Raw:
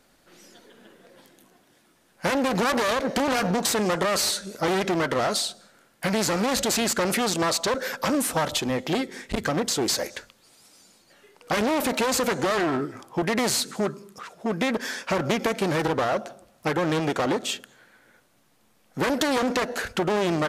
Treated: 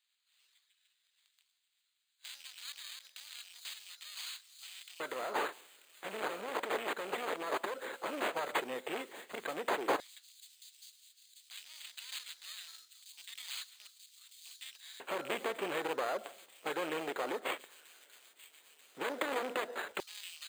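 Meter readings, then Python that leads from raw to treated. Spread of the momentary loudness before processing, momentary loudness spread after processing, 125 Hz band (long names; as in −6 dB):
7 LU, 19 LU, −30.5 dB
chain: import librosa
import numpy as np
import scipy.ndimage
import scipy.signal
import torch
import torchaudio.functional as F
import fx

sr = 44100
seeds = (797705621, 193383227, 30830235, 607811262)

y = fx.rattle_buzz(x, sr, strikes_db=-28.0, level_db=-24.0)
y = fx.tone_stack(y, sr, knobs='5-5-5')
y = fx.rider(y, sr, range_db=10, speed_s=2.0)
y = np.repeat(y[::8], 8)[:len(y)]
y = fx.high_shelf(y, sr, hz=2900.0, db=-11.5)
y = fx.echo_wet_highpass(y, sr, ms=937, feedback_pct=71, hz=4900.0, wet_db=-7.5)
y = fx.filter_lfo_highpass(y, sr, shape='square', hz=0.1, low_hz=420.0, high_hz=4400.0, q=2.0)
y = y * 10.0 ** (1.0 / 20.0)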